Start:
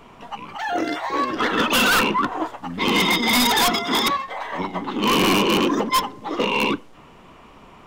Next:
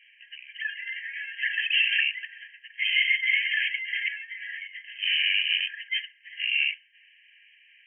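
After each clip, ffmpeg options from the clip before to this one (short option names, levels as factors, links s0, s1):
-af "afftfilt=real='re*between(b*sr/4096,1600,3200)':imag='im*between(b*sr/4096,1600,3200)':win_size=4096:overlap=0.75"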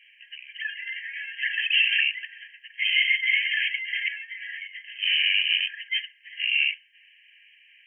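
-af "equalizer=f=1600:w=1.5:g=-3.5,volume=1.41"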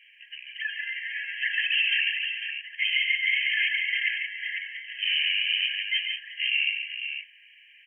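-filter_complex "[0:a]alimiter=limit=0.158:level=0:latency=1:release=211,asplit=2[s0][s1];[s1]aecho=0:1:142|181|500:0.447|0.251|0.422[s2];[s0][s2]amix=inputs=2:normalize=0"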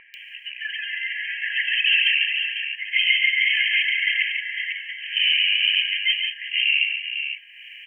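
-filter_complex "[0:a]acompressor=mode=upward:threshold=0.0141:ratio=2.5,acrossover=split=1700[s0][s1];[s1]adelay=140[s2];[s0][s2]amix=inputs=2:normalize=0,volume=2.24"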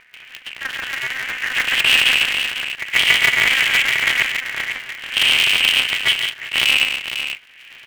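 -filter_complex "[0:a]asplit=2[s0][s1];[s1]adynamicsmooth=sensitivity=3:basefreq=1700,volume=1[s2];[s0][s2]amix=inputs=2:normalize=0,aeval=exprs='val(0)*sgn(sin(2*PI*130*n/s))':c=same,volume=0.891"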